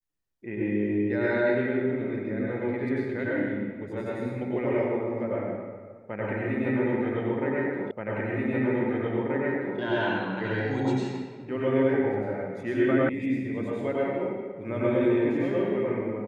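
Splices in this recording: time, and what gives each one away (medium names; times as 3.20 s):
7.91 s: repeat of the last 1.88 s
13.09 s: sound stops dead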